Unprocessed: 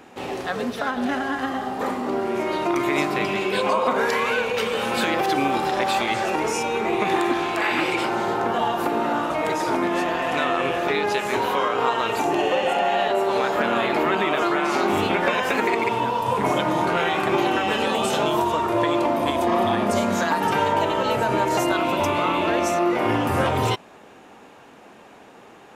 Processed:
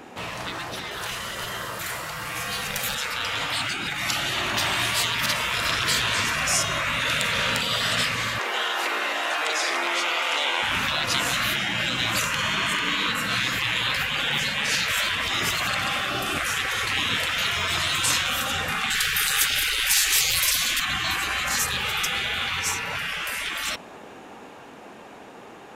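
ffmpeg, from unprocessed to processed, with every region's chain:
-filter_complex "[0:a]asettb=1/sr,asplit=3[s0][s1][s2];[s0]atrim=end=0.914[s3];[s1]atrim=start=0.91:end=2.95,asetpts=PTS-STARTPTS,afade=t=in:d=0.004:c=qsin,afade=t=out:st=2.036:d=0.004:c=qsin,aemphasis=mode=production:type=50kf,aeval=exprs='clip(val(0),-1,0.141)':c=same[s4];[s2]atrim=start=2.946[s5];[s3][s4]acrossfade=d=0.004:c1=hsin:c2=qsin[s6];[s6][s5]acrossfade=d=0.004:c1=qsin:c2=hsin,asettb=1/sr,asplit=3[s7][s8][s9];[s7]atrim=end=8.384[s10];[s8]atrim=start=8.38:end=10.63,asetpts=PTS-STARTPTS,afade=t=in:d=0.004:c=qsin,afade=t=out:st=2.246:d=0.004:c=qsin,acrossover=split=8400[s11][s12];[s12]acompressor=threshold=0.00126:ratio=4:attack=1:release=60[s13];[s11][s13]amix=inputs=2:normalize=0,highpass=1300,equalizer=f=1700:t=o:w=0.27:g=9.5[s14];[s9]atrim=start=10.626[s15];[s10][s14]acrossfade=d=0.004:c1=hsin:c2=qsin[s16];[s16][s15]acrossfade=d=0.004:c1=qsin:c2=hsin,asettb=1/sr,asplit=3[s17][s18][s19];[s17]atrim=end=18.904[s20];[s18]atrim=start=18.9:end=20.8,asetpts=PTS-STARTPTS,afade=t=in:d=0.004:c=qsin,afade=t=out:st=1.896:d=0.004:c=qsin,highshelf=f=9200:g=9,acontrast=80,asoftclip=type=hard:threshold=0.422[s21];[s19]atrim=start=20.796[s22];[s20][s21]acrossfade=d=0.004:c1=hsin:c2=qsin[s23];[s23][s22]acrossfade=d=0.004:c1=qsin:c2=hsin,afftfilt=real='re*lt(hypot(re,im),0.0891)':imag='im*lt(hypot(re,im),0.0891)':win_size=1024:overlap=0.75,dynaudnorm=f=440:g=17:m=2.11,volume=1.5"

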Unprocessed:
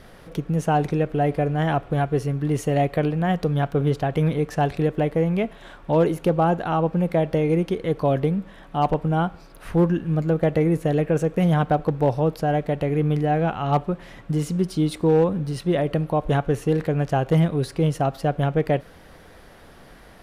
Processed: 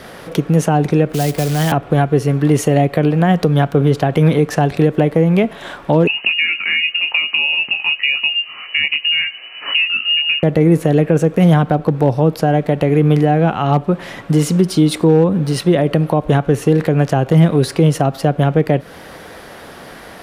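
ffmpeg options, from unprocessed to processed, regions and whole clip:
-filter_complex "[0:a]asettb=1/sr,asplit=3[s0][s1][s2];[s0]atrim=end=1.134[s3];[s1]atrim=start=1.13:end=1.72,asetpts=PTS-STARTPTS,afade=t=in:d=0.004:c=qsin,afade=t=out:st=0.586:d=0.004:c=qsin,acrusher=bits=4:mode=log:mix=0:aa=0.000001,acrossover=split=180|3000[s4][s5][s6];[s5]acompressor=threshold=0.0141:ratio=2:attack=3.2:release=140:knee=2.83:detection=peak[s7];[s4][s7][s6]amix=inputs=3:normalize=0[s8];[s2]atrim=start=1.716[s9];[s3][s8]acrossfade=d=0.004:c1=hsin:c2=qsin[s10];[s10][s9]acrossfade=d=0.004:c1=qsin:c2=hsin,asettb=1/sr,asplit=3[s11][s12][s13];[s11]atrim=end=6.074[s14];[s12]atrim=start=6.07:end=10.43,asetpts=PTS-STARTPTS,afade=t=in:d=0.004:c=qsin,afade=t=out:st=4.356:d=0.004:c=qsin,bandreject=f=1500:w=6.2,asplit=2[s15][s16];[s16]adelay=20,volume=0.562[s17];[s15][s17]amix=inputs=2:normalize=0,atrim=end_sample=192276,lowpass=f=2600:t=q:w=0.5098,lowpass=f=2600:t=q:w=0.6013,lowpass=f=2600:t=q:w=0.9,lowpass=f=2600:t=q:w=2.563,afreqshift=-3000[s18];[s13]atrim=start=10.426[s19];[s14][s18]acrossfade=d=0.004:c1=hsin:c2=qsin[s20];[s20][s19]acrossfade=d=0.004:c1=qsin:c2=hsin,highpass=f=220:p=1,acrossover=split=300[s21][s22];[s22]acompressor=threshold=0.0355:ratio=5[s23];[s21][s23]amix=inputs=2:normalize=0,alimiter=level_in=6.31:limit=0.891:release=50:level=0:latency=1,volume=0.794"

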